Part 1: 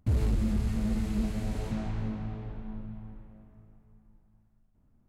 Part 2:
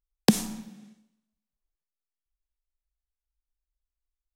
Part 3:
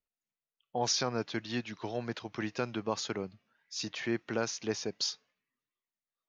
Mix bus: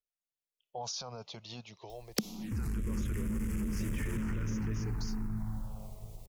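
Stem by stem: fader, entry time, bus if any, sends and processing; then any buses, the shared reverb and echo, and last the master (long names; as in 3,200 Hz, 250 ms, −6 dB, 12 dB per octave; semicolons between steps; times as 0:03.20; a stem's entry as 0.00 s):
−8.0 dB, 2.45 s, no send, high-shelf EQ 6,200 Hz +10 dB; downward compressor 6 to 1, threshold −29 dBFS, peak gain reduction 6.5 dB; leveller curve on the samples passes 3
+1.5 dB, 1.90 s, no send, upward compression, threshold −38 dBFS
−7.5 dB, 0.00 s, no send, brickwall limiter −27.5 dBFS, peak gain reduction 11 dB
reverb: not used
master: automatic gain control gain up to 7 dB; phaser swept by the level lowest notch 200 Hz, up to 1,700 Hz, full sweep at −21 dBFS; downward compressor 8 to 1, threshold −31 dBFS, peak gain reduction 20 dB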